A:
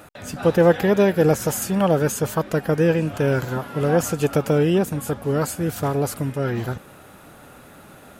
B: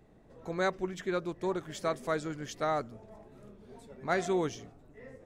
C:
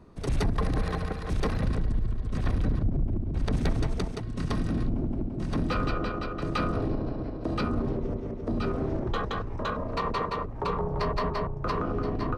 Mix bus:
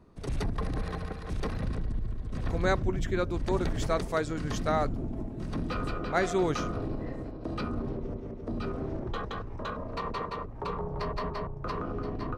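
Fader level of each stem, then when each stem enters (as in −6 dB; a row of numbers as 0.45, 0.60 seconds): muted, +2.5 dB, −5.0 dB; muted, 2.05 s, 0.00 s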